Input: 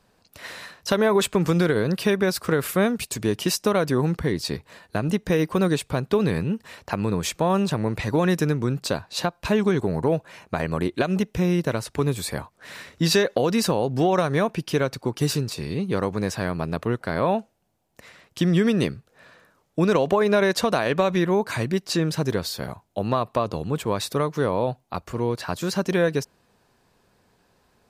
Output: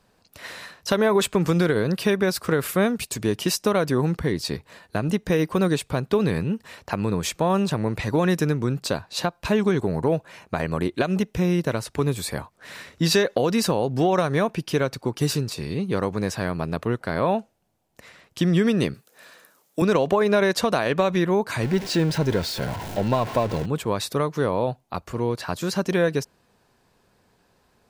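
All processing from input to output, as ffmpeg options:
-filter_complex "[0:a]asettb=1/sr,asplit=3[a][b][c];[a]atrim=end=18.944[d];[b]atrim=start=18.94:end=19.82,asetpts=PTS-STARTPTS,afade=t=in:d=0.004:c=qsin,afade=t=out:st=0.876:d=0.004:c=qsin,highpass=220,aemphasis=mode=production:type=75kf[e];[c]atrim=start=19.816[f];[d][e]acrossfade=d=0.004:c1=hsin:c2=qsin[g];[g][f]acrossfade=d=0.004:c1=qsin:c2=hsin,asettb=1/sr,asplit=3[h][i][j];[h]atrim=end=21.634[k];[i]atrim=start=21.63:end=23.66,asetpts=PTS-STARTPTS,afade=t=in:d=0.004:c=qsin,afade=t=out:st=2.026:d=0.004:c=qsin,aeval=exprs='val(0)+0.5*0.0473*sgn(val(0))':c=same,asuperstop=centerf=1200:order=8:qfactor=7.3,equalizer=f=13k:w=0.36:g=-8.5[l];[j]atrim=start=23.656[m];[k][l]acrossfade=d=0.004:c1=hsin:c2=qsin[n];[n][m]acrossfade=d=0.004:c1=qsin:c2=hsin"

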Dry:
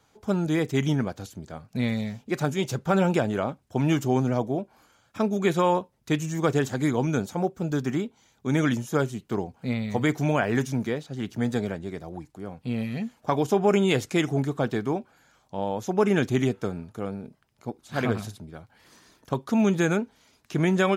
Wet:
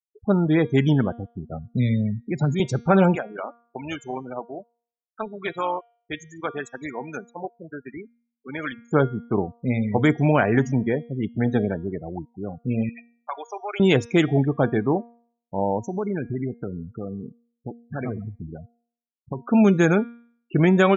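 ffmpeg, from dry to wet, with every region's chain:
-filter_complex "[0:a]asettb=1/sr,asplit=3[a][b][c];[a]atrim=end=1.514[d];[b]atrim=start=1.51:end=2.6,asetpts=PTS-STARTPTS,afade=t=in:d=0.004:c=qsin,afade=t=out:st=1.086:d=0.004:c=qsin,highpass=f=64:w=0.5412,highpass=f=64:w=1.3066,lowshelf=f=230:g=5.5,acrossover=split=170|3000[e][f][g];[f]acompressor=threshold=-32dB:ratio=3:attack=3.2:release=140:knee=2.83:detection=peak[h];[e][h][g]amix=inputs=3:normalize=0[i];[c]atrim=start=2.596[j];[d][i]acrossfade=d=0.004:c1=hsin:c2=qsin[k];[k][j]acrossfade=d=0.004:c1=qsin:c2=hsin,asettb=1/sr,asplit=3[l][m][n];[l]atrim=end=3.154[o];[m]atrim=start=3.15:end=8.91,asetpts=PTS-STARTPTS,afade=t=in:d=0.004:c=qsin,afade=t=out:st=5.756:d=0.004:c=qsin,highpass=f=1.3k:p=1,tremolo=f=230:d=0.462[p];[n]atrim=start=8.906[q];[o][p]acrossfade=d=0.004:c1=hsin:c2=qsin[r];[r][q]acrossfade=d=0.004:c1=qsin:c2=hsin,asettb=1/sr,asplit=3[s][t][u];[s]atrim=end=12.894[v];[t]atrim=start=12.89:end=13.8,asetpts=PTS-STARTPTS,afade=t=in:d=0.004:c=qsin,afade=t=out:st=0.906:d=0.004:c=qsin,highpass=1.1k,acompressor=threshold=-37dB:ratio=1.5:attack=3.2:release=140:knee=1:detection=peak[w];[u]atrim=start=13.796[x];[v][w]acrossfade=d=0.004:c1=hsin:c2=qsin[y];[y][x]acrossfade=d=0.004:c1=qsin:c2=hsin,asettb=1/sr,asplit=3[z][aa][ab];[z]atrim=end=15.844[ac];[aa]atrim=start=15.84:end=19.4,asetpts=PTS-STARTPTS,afade=t=in:d=0.004:c=qsin,afade=t=out:st=3.556:d=0.004:c=qsin,lowshelf=f=350:g=2.5,acompressor=threshold=-34dB:ratio=2.5:attack=3.2:release=140:knee=1:detection=peak[ad];[ab]atrim=start=19.396[ae];[ac][ad]acrossfade=d=0.004:c1=hsin:c2=qsin[af];[af][ae]acrossfade=d=0.004:c1=qsin:c2=hsin,afftfilt=real='re*gte(hypot(re,im),0.0251)':imag='im*gte(hypot(re,im),0.0251)':win_size=1024:overlap=0.75,highshelf=f=3.7k:g=-6,bandreject=f=235.7:t=h:w=4,bandreject=f=471.4:t=h:w=4,bandreject=f=707.1:t=h:w=4,bandreject=f=942.8:t=h:w=4,bandreject=f=1.1785k:t=h:w=4,bandreject=f=1.4142k:t=h:w=4,bandreject=f=1.6499k:t=h:w=4,bandreject=f=1.8856k:t=h:w=4,bandreject=f=2.1213k:t=h:w=4,bandreject=f=2.357k:t=h:w=4,bandreject=f=2.5927k:t=h:w=4,bandreject=f=2.8284k:t=h:w=4,bandreject=f=3.0641k:t=h:w=4,bandreject=f=3.2998k:t=h:w=4,bandreject=f=3.5355k:t=h:w=4,bandreject=f=3.7712k:t=h:w=4,bandreject=f=4.0069k:t=h:w=4,bandreject=f=4.2426k:t=h:w=4,bandreject=f=4.4783k:t=h:w=4,bandreject=f=4.714k:t=h:w=4,bandreject=f=4.9497k:t=h:w=4,bandreject=f=5.1854k:t=h:w=4,bandreject=f=5.4211k:t=h:w=4,bandreject=f=5.6568k:t=h:w=4,bandreject=f=5.8925k:t=h:w=4,bandreject=f=6.1282k:t=h:w=4,volume=5.5dB"

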